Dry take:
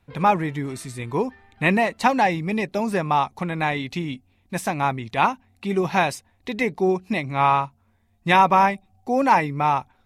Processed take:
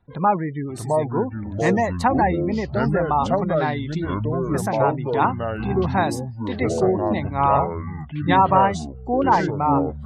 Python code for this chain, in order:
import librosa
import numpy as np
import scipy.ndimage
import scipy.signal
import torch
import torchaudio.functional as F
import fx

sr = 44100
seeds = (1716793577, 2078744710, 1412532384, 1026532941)

y = fx.spec_gate(x, sr, threshold_db=-25, keep='strong')
y = fx.peak_eq(y, sr, hz=2500.0, db=-15.0, octaves=0.41)
y = fx.echo_pitch(y, sr, ms=581, semitones=-5, count=3, db_per_echo=-3.0)